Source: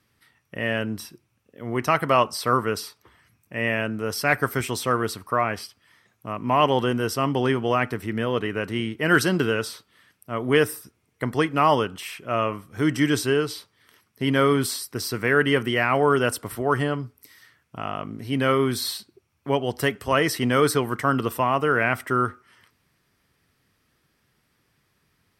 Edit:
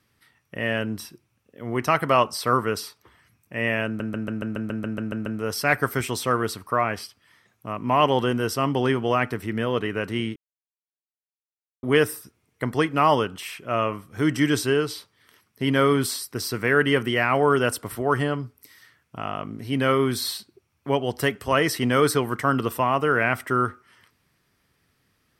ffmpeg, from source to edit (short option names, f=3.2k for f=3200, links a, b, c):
-filter_complex "[0:a]asplit=13[a][b][c][d][e][f][g][h][i][j][k][l][m];[a]atrim=end=4.002[n];[b]atrim=start=3.858:end=4.002[o];[c]atrim=start=3.858:end=4.002[p];[d]atrim=start=3.858:end=4.002[q];[e]atrim=start=3.858:end=4.002[r];[f]atrim=start=3.858:end=4.002[s];[g]atrim=start=3.858:end=4.002[t];[h]atrim=start=3.858:end=4.002[u];[i]atrim=start=3.858:end=4.002[v];[j]atrim=start=3.858:end=4.002[w];[k]atrim=start=3.858:end=8.96,asetpts=PTS-STARTPTS,afade=t=out:st=5.098:d=0.004:c=hsin[x];[l]atrim=start=8.96:end=10.43,asetpts=PTS-STARTPTS,volume=0[y];[m]atrim=start=10.43,asetpts=PTS-STARTPTS,afade=t=in:d=0.004:c=hsin[z];[n][o]acrossfade=d=0.004:c1=hsin:c2=hsin[aa];[aa][p]acrossfade=d=0.004:c1=hsin:c2=hsin[ab];[ab][q]acrossfade=d=0.004:c1=hsin:c2=hsin[ac];[ac][r]acrossfade=d=0.004:c1=hsin:c2=hsin[ad];[ad][s]acrossfade=d=0.004:c1=hsin:c2=hsin[ae];[ae][t]acrossfade=d=0.004:c1=hsin:c2=hsin[af];[af][u]acrossfade=d=0.004:c1=hsin:c2=hsin[ag];[ag][v]acrossfade=d=0.004:c1=hsin:c2=hsin[ah];[ah][w]acrossfade=d=0.004:c1=hsin:c2=hsin[ai];[x][y][z]concat=n=3:v=0:a=1[aj];[ai][aj]acrossfade=d=0.004:c1=hsin:c2=hsin"